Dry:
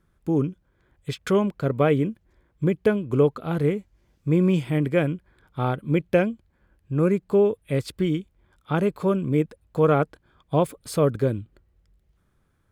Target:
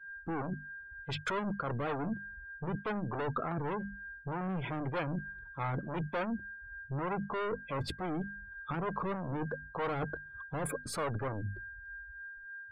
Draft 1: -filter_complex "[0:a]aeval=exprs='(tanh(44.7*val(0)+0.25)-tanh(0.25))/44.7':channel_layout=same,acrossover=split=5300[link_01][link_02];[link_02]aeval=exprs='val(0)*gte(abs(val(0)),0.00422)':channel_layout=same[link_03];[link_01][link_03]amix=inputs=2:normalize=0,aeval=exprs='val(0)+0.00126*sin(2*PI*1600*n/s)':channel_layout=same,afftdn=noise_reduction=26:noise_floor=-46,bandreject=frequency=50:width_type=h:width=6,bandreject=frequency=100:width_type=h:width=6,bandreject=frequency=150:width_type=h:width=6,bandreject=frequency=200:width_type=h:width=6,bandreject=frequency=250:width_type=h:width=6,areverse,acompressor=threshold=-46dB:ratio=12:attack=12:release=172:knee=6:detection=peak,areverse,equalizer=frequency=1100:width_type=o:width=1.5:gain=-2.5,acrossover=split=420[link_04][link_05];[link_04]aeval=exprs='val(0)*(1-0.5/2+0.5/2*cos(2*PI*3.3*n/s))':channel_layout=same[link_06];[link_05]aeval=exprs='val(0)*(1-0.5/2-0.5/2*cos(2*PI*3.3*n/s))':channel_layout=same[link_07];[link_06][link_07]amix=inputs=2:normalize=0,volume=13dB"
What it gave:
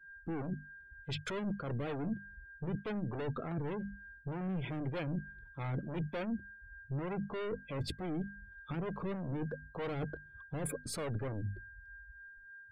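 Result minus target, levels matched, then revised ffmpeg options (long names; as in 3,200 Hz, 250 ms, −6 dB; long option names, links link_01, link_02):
1,000 Hz band −7.0 dB
-filter_complex "[0:a]aeval=exprs='(tanh(44.7*val(0)+0.25)-tanh(0.25))/44.7':channel_layout=same,acrossover=split=5300[link_01][link_02];[link_02]aeval=exprs='val(0)*gte(abs(val(0)),0.00422)':channel_layout=same[link_03];[link_01][link_03]amix=inputs=2:normalize=0,aeval=exprs='val(0)+0.00126*sin(2*PI*1600*n/s)':channel_layout=same,afftdn=noise_reduction=26:noise_floor=-46,bandreject=frequency=50:width_type=h:width=6,bandreject=frequency=100:width_type=h:width=6,bandreject=frequency=150:width_type=h:width=6,bandreject=frequency=200:width_type=h:width=6,bandreject=frequency=250:width_type=h:width=6,areverse,acompressor=threshold=-46dB:ratio=12:attack=12:release=172:knee=6:detection=peak,areverse,equalizer=frequency=1100:width_type=o:width=1.5:gain=8,acrossover=split=420[link_04][link_05];[link_04]aeval=exprs='val(0)*(1-0.5/2+0.5/2*cos(2*PI*3.3*n/s))':channel_layout=same[link_06];[link_05]aeval=exprs='val(0)*(1-0.5/2-0.5/2*cos(2*PI*3.3*n/s))':channel_layout=same[link_07];[link_06][link_07]amix=inputs=2:normalize=0,volume=13dB"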